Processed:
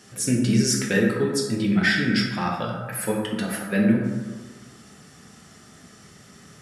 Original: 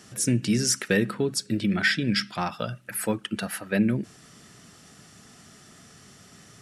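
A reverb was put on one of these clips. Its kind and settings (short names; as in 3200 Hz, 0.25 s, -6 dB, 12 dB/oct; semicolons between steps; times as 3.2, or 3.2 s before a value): plate-style reverb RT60 1.5 s, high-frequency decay 0.4×, DRR -2 dB; gain -1.5 dB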